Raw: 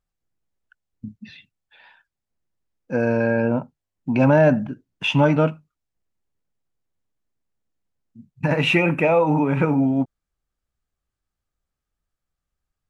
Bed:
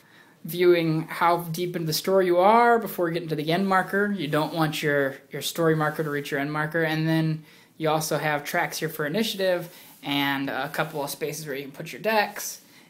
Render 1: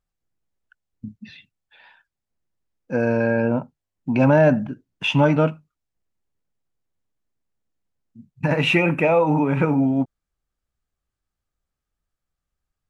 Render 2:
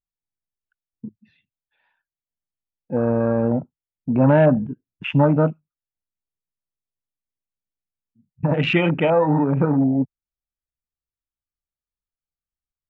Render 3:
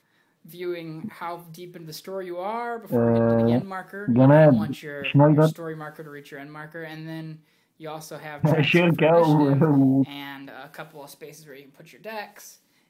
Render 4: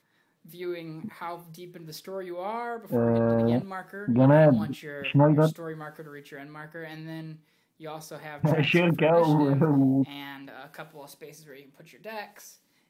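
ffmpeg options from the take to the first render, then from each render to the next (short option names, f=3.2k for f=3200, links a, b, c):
-af anull
-af "afwtdn=0.0631,bass=f=250:g=2,treble=f=4k:g=-11"
-filter_complex "[1:a]volume=-12dB[a];[0:a][a]amix=inputs=2:normalize=0"
-af "volume=-3.5dB"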